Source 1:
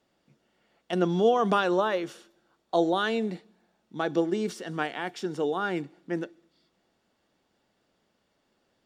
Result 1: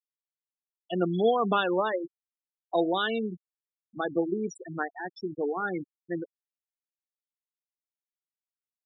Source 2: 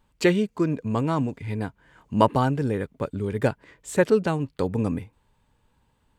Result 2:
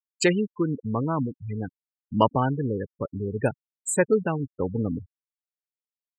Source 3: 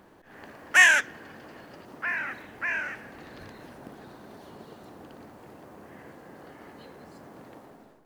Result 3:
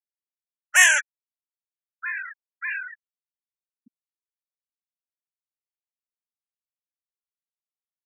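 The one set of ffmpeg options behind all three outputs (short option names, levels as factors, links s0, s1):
-af "aemphasis=mode=production:type=75fm,afftfilt=real='re*gte(hypot(re,im),0.0794)':imag='im*gte(hypot(re,im),0.0794)':win_size=1024:overlap=0.75,volume=0.891"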